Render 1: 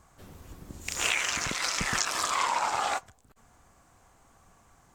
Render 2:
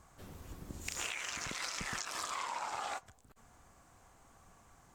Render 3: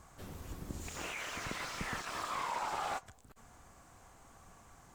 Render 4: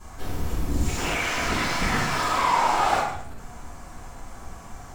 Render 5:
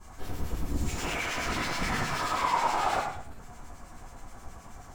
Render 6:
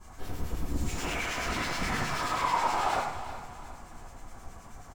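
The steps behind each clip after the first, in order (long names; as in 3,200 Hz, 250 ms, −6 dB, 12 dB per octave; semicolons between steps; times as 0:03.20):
downward compressor 8 to 1, threshold −34 dBFS, peak gain reduction 12.5 dB; level −2 dB
slew-rate limiting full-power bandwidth 18 Hz; level +3.5 dB
convolution reverb RT60 0.75 s, pre-delay 3 ms, DRR −10.5 dB
two-band tremolo in antiphase 9.4 Hz, depth 50%, crossover 1,700 Hz; level −3.5 dB
repeating echo 361 ms, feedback 40%, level −13 dB; level −1 dB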